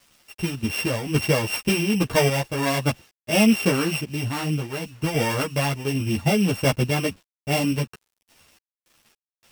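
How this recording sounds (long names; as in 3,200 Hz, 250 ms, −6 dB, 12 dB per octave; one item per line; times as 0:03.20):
a buzz of ramps at a fixed pitch in blocks of 16 samples
sample-and-hold tremolo, depth 75%
a quantiser's noise floor 10 bits, dither none
a shimmering, thickened sound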